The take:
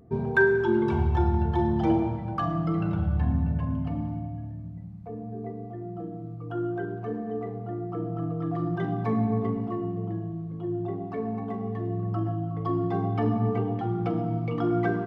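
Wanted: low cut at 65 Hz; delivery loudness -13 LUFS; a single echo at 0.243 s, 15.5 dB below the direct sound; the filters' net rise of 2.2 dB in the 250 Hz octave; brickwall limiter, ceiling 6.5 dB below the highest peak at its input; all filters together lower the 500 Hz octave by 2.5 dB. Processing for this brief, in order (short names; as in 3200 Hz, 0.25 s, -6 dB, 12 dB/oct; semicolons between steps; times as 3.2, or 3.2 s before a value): HPF 65 Hz; bell 250 Hz +6 dB; bell 500 Hz -8 dB; limiter -18 dBFS; echo 0.243 s -15.5 dB; gain +16 dB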